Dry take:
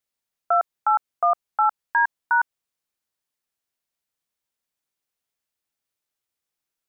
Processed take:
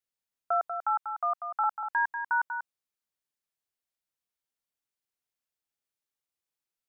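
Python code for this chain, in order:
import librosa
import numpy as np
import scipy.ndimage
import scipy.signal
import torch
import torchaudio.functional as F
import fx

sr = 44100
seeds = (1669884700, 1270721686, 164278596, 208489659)

y = fx.highpass(x, sr, hz=770.0, slope=24, at=(0.74, 1.64))
y = y + 10.0 ** (-8.0 / 20.0) * np.pad(y, (int(191 * sr / 1000.0), 0))[:len(y)]
y = y * librosa.db_to_amplitude(-7.5)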